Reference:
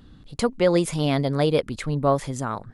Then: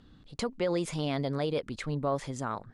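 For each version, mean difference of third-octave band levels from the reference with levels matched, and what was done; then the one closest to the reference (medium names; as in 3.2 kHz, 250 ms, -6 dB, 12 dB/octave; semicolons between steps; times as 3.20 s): 2.0 dB: peak limiter -14.5 dBFS, peak gain reduction 7 dB; low-pass 7.6 kHz 12 dB/octave; bass shelf 180 Hz -4.5 dB; trim -5 dB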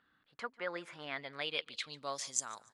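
8.0 dB: differentiator; low-pass sweep 1.6 kHz -> 7.3 kHz, 1.01–2.45 s; on a send: feedback delay 145 ms, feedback 32%, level -22.5 dB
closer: first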